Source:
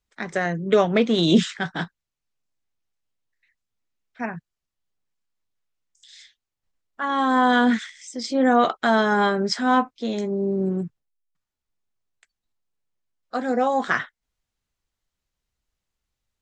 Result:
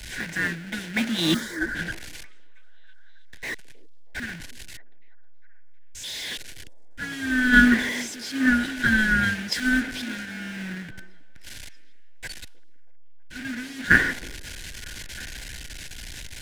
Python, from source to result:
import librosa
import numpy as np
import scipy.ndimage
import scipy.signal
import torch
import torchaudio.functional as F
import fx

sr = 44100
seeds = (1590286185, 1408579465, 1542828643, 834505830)

p1 = fx.delta_mod(x, sr, bps=64000, step_db=-21.5)
p2 = fx.brickwall_bandstop(p1, sr, low_hz=350.0, high_hz=1400.0)
p3 = fx.peak_eq(p2, sr, hz=1200.0, db=13.5, octaves=2.9)
p4 = fx.sample_hold(p3, sr, seeds[0], rate_hz=1500.0, jitter_pct=0)
p5 = p3 + (p4 * librosa.db_to_amplitude(-8.5))
p6 = fx.fixed_phaser(p5, sr, hz=720.0, stages=6, at=(1.34, 1.75))
p7 = p6 + fx.echo_stepped(p6, sr, ms=318, hz=370.0, octaves=0.7, feedback_pct=70, wet_db=-5, dry=0)
p8 = fx.band_widen(p7, sr, depth_pct=100)
y = p8 * librosa.db_to_amplitude(-12.0)